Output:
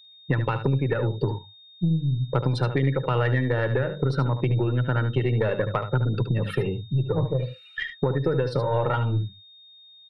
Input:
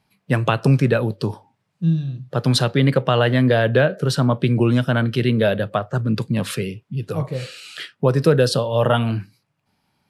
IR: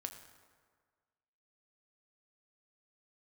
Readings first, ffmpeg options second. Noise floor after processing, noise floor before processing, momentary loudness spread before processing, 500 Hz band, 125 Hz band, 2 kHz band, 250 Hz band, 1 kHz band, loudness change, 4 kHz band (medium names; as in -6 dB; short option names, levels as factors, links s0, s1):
-51 dBFS, -71 dBFS, 11 LU, -6.5 dB, -3.5 dB, -6.5 dB, -8.0 dB, -5.0 dB, -5.5 dB, -11.5 dB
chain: -af "bandreject=f=50:t=h:w=6,bandreject=f=100:t=h:w=6,bandreject=f=150:t=h:w=6,bandreject=f=200:t=h:w=6,afftdn=nr=25:nf=-28,equalizer=f=125:t=o:w=1:g=7,equalizer=f=250:t=o:w=1:g=8,equalizer=f=1000:t=o:w=1:g=6,equalizer=f=2000:t=o:w=1:g=7,equalizer=f=4000:t=o:w=1:g=-6,equalizer=f=8000:t=o:w=1:g=-10,alimiter=limit=0.596:level=0:latency=1:release=462,aecho=1:1:2.2:0.74,acompressor=threshold=0.126:ratio=16,equalizer=f=1900:t=o:w=0.23:g=3.5,aeval=exprs='(tanh(3.98*val(0)+0.4)-tanh(0.4))/3.98':c=same,aeval=exprs='val(0)+0.00355*sin(2*PI*3700*n/s)':c=same,aecho=1:1:74:0.316"